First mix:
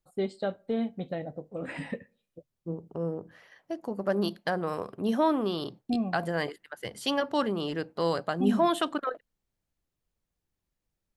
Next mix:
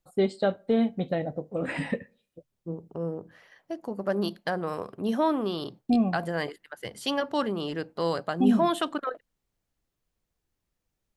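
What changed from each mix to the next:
first voice +6.0 dB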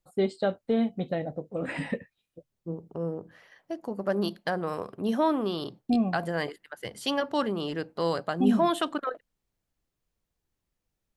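reverb: off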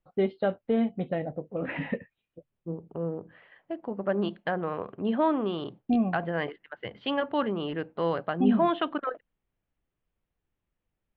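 master: add steep low-pass 3200 Hz 36 dB/oct

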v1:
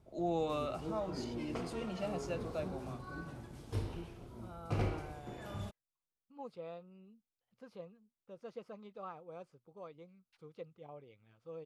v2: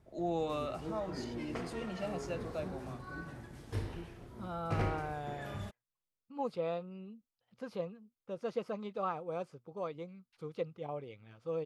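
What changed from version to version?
second voice +10.5 dB; background: add bell 1800 Hz +8.5 dB 0.4 oct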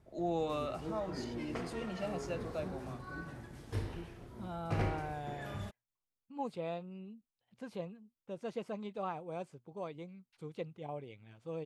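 second voice: add thirty-one-band EQ 500 Hz -6 dB, 1250 Hz -9 dB, 5000 Hz -5 dB, 8000 Hz +6 dB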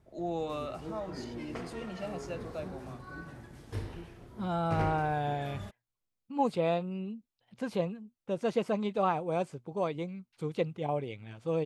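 second voice +10.5 dB

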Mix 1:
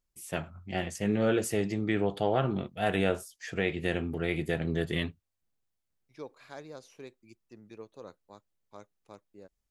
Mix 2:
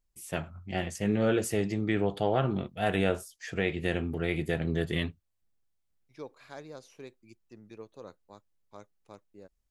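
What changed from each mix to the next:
master: add low shelf 66 Hz +6.5 dB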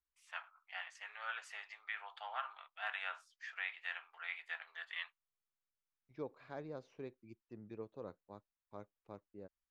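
first voice: add steep high-pass 980 Hz 36 dB/oct; master: add tape spacing loss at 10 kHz 30 dB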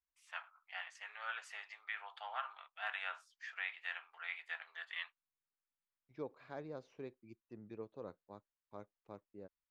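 master: add low shelf 66 Hz -6.5 dB

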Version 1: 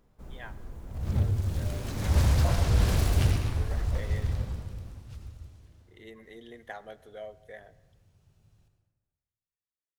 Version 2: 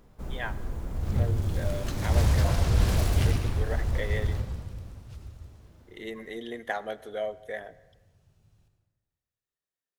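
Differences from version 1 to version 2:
speech +10.0 dB; first sound +8.5 dB

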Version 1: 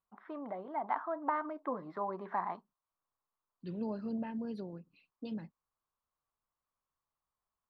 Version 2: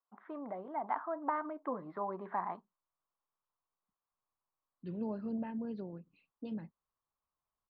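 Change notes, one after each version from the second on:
second voice: entry +1.20 s; master: add air absorption 270 m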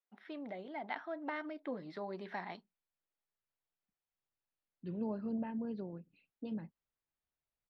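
first voice: remove synth low-pass 1100 Hz, resonance Q 5.4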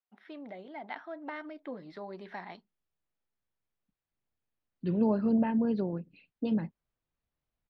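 second voice +11.5 dB

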